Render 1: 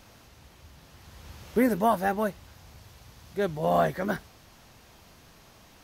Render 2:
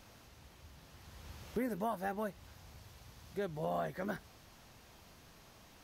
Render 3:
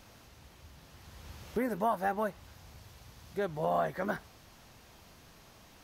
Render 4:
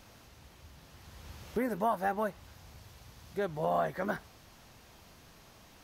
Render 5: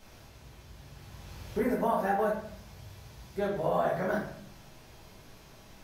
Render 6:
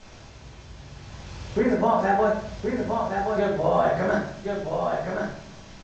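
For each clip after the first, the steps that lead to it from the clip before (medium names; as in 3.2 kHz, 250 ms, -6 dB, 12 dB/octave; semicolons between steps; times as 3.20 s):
compression 2.5:1, threshold -32 dBFS, peak gain reduction 9.5 dB; trim -5 dB
dynamic bell 990 Hz, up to +6 dB, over -49 dBFS, Q 0.7; trim +2.5 dB
no audible change
reverberation RT60 0.65 s, pre-delay 5 ms, DRR -5.5 dB; trim -4 dB
delay 1072 ms -5 dB; trim +7 dB; G.722 64 kbps 16 kHz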